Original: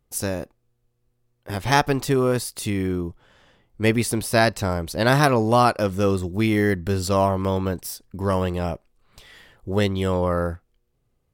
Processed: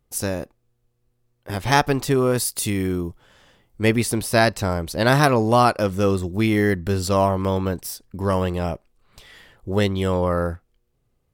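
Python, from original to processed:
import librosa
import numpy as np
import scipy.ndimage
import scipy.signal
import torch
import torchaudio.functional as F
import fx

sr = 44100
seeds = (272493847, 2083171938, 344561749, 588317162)

y = fx.high_shelf(x, sr, hz=5800.0, db=8.5, at=(2.37, 3.83))
y = F.gain(torch.from_numpy(y), 1.0).numpy()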